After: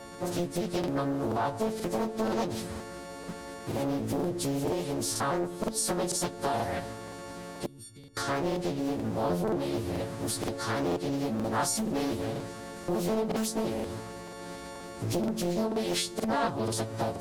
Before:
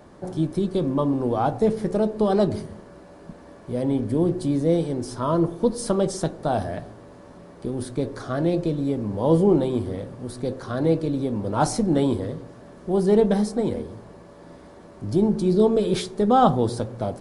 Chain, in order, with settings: partials quantised in pitch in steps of 4 st; compression 4:1, threshold -30 dBFS, peak gain reduction 16.5 dB; 7.66–8.17 s: amplifier tone stack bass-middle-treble 6-0-2; crackling interface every 0.48 s, samples 2048, repeat, from 0.79 s; loudspeaker Doppler distortion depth 0.89 ms; trim +2 dB

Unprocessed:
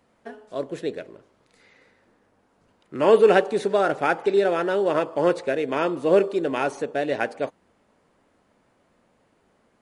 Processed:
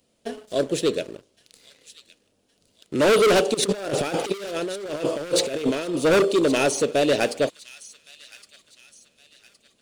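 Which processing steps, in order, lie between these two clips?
high-order bell 1.3 kHz -11 dB; overload inside the chain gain 21 dB; treble shelf 2.3 kHz +11.5 dB; 3.54–5.96 s: compressor with a negative ratio -31 dBFS, ratio -0.5; waveshaping leveller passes 2; feedback echo behind a high-pass 1115 ms, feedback 40%, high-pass 2.7 kHz, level -14.5 dB

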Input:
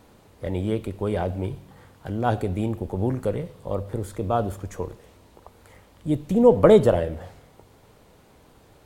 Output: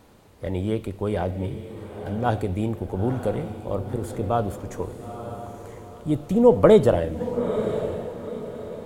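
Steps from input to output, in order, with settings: 1.31–2.26 s: comb of notches 340 Hz; echo that smears into a reverb 938 ms, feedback 40%, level -9.5 dB

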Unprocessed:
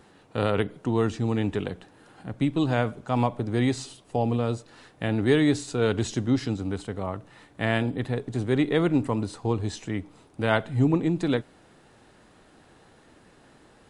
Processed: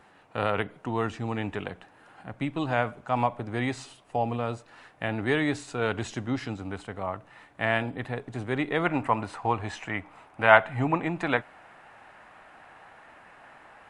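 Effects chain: high-order bell 1.3 kHz +8.5 dB 2.5 oct, from 8.84 s +15.5 dB; trim -6.5 dB

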